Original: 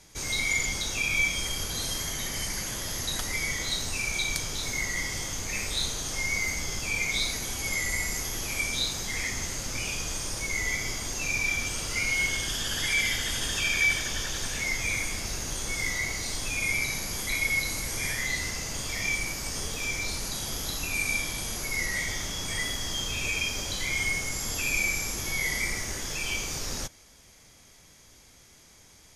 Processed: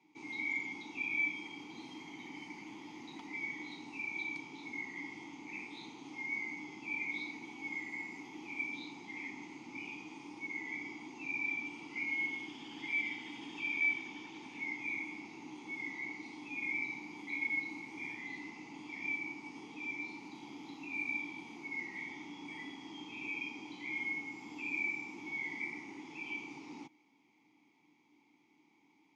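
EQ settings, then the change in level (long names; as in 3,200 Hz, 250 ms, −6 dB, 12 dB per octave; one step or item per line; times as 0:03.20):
formant filter u
high-pass filter 130 Hz 24 dB per octave
high-frequency loss of the air 69 metres
+3.0 dB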